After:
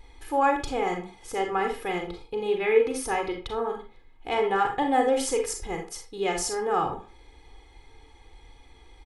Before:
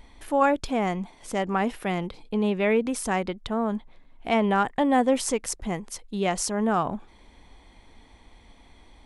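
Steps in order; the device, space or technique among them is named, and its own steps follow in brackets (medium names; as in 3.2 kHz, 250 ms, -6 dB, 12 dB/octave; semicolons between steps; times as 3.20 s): 2.48–3.72 s: band-stop 7.6 kHz, Q 5.7; microphone above a desk (comb 2.4 ms, depth 85%; reverberation RT60 0.35 s, pre-delay 33 ms, DRR 3 dB); trim -4.5 dB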